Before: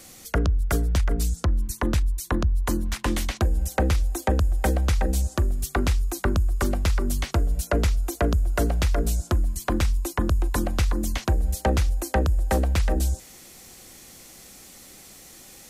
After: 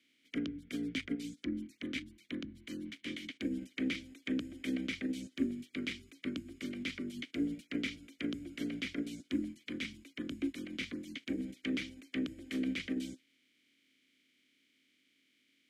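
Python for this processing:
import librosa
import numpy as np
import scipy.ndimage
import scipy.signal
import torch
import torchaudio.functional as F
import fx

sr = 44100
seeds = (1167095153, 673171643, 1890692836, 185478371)

y = fx.spec_clip(x, sr, under_db=23)
y = fx.vowel_filter(y, sr, vowel='i')
y = fx.upward_expand(y, sr, threshold_db=-44.0, expansion=1.5)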